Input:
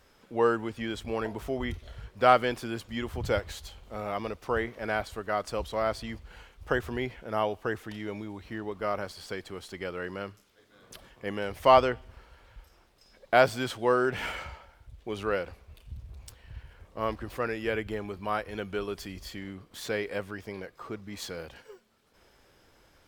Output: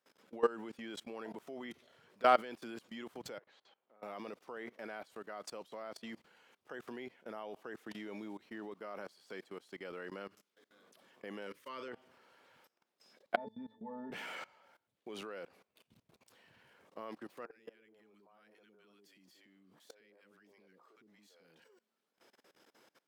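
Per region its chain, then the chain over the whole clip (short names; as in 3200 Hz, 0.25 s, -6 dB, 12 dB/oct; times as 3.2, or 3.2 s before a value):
3.38–4.03 HPF 650 Hz 6 dB/oct + tape spacing loss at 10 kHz 38 dB + compressor 2:1, threshold -51 dBFS
11.47–11.88 auto swell 0.136 s + Butterworth band-stop 730 Hz, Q 1.7 + doubler 38 ms -11 dB
13.36–14.12 dynamic EQ 310 Hz, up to -4 dB, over -35 dBFS, Q 1.6 + octave resonator A, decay 0.24 s + small resonant body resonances 290/630 Hz, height 17 dB, ringing for 25 ms
17.45–21.64 three bands offset in time mids, highs, lows 60/110 ms, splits 400/1200 Hz + compressor 16:1, threshold -39 dBFS
whole clip: HPF 190 Hz 24 dB/oct; level quantiser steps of 21 dB; gain -3 dB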